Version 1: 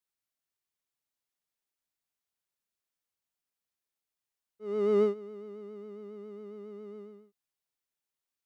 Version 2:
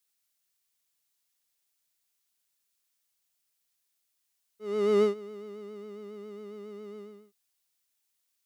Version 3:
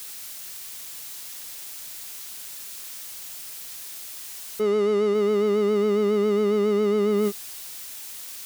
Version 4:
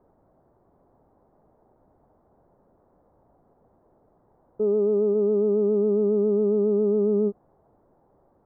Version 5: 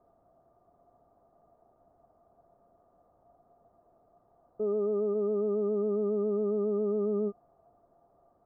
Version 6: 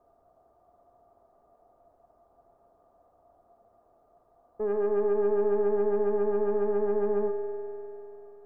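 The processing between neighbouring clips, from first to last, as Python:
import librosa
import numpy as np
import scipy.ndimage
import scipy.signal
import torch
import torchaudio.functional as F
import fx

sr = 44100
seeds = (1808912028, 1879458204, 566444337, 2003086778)

y1 = fx.high_shelf(x, sr, hz=2200.0, db=12.0)
y1 = y1 * 10.0 ** (1.0 / 20.0)
y2 = fx.env_flatten(y1, sr, amount_pct=100)
y3 = scipy.signal.sosfilt(scipy.signal.cheby2(4, 60, 2600.0, 'lowpass', fs=sr, output='sos'), y2)
y4 = fx.small_body(y3, sr, hz=(690.0, 1200.0), ring_ms=70, db=17)
y4 = y4 * 10.0 ** (-8.0 / 20.0)
y5 = fx.tracing_dist(y4, sr, depth_ms=0.13)
y5 = fx.peak_eq(y5, sr, hz=160.0, db=-8.5, octaves=1.6)
y5 = fx.rev_spring(y5, sr, rt60_s=3.2, pass_ms=(49,), chirp_ms=20, drr_db=5.5)
y5 = y5 * 10.0 ** (2.5 / 20.0)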